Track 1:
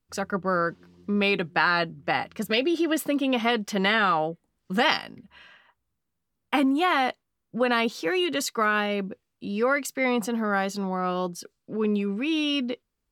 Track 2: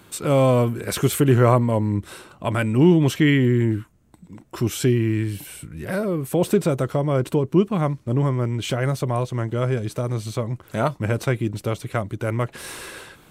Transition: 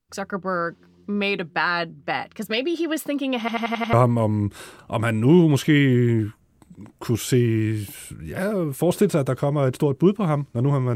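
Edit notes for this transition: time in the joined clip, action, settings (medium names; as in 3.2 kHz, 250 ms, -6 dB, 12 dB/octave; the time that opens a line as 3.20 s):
track 1
3.39 s: stutter in place 0.09 s, 6 plays
3.93 s: go over to track 2 from 1.45 s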